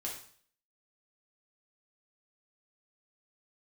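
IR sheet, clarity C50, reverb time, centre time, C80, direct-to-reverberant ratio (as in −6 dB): 5.5 dB, 0.50 s, 32 ms, 9.5 dB, −4.0 dB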